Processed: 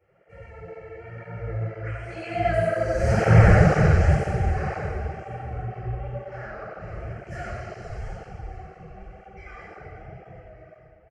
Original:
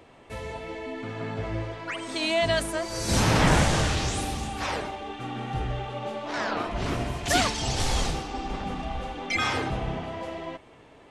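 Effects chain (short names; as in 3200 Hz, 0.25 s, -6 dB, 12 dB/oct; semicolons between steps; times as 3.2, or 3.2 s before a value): Doppler pass-by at 3.37, 10 m/s, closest 6.4 m; dynamic EQ 2700 Hz, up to -3 dB, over -52 dBFS, Q 0.8; in parallel at -8.5 dB: wavefolder -26.5 dBFS; on the sum: tape spacing loss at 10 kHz 22 dB; fixed phaser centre 980 Hz, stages 6; reverse bouncing-ball echo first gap 90 ms, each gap 1.5×, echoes 5; shoebox room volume 680 m³, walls mixed, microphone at 4.4 m; tape flanging out of phase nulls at 2 Hz, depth 7.7 ms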